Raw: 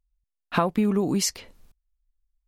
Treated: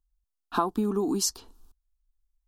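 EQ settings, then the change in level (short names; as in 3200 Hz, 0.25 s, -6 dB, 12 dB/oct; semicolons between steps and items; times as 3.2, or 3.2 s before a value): dynamic EQ 2700 Hz, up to -5 dB, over -49 dBFS, Q 4; fixed phaser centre 560 Hz, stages 6; 0.0 dB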